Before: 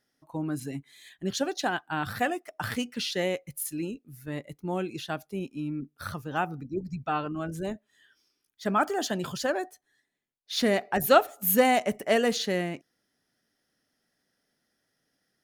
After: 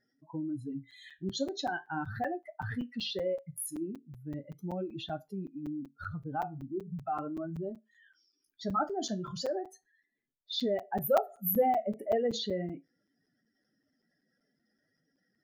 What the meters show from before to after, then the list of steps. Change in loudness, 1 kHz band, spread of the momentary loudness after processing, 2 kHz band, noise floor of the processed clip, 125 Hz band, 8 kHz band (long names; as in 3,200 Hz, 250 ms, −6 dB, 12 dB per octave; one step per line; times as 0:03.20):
−6.0 dB, −5.5 dB, 13 LU, −11.5 dB, −80 dBFS, −4.0 dB, −8.5 dB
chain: expanding power law on the bin magnitudes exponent 2.4
flanger 0.38 Hz, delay 5.8 ms, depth 9.7 ms, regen −62%
in parallel at −0.5 dB: downward compressor, threshold −44 dBFS, peak gain reduction 23.5 dB
on the sum: tuned comb filter 55 Hz, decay 0.21 s, harmonics all, mix 40%
regular buffer underruns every 0.19 s, samples 256, zero, from 0:00.91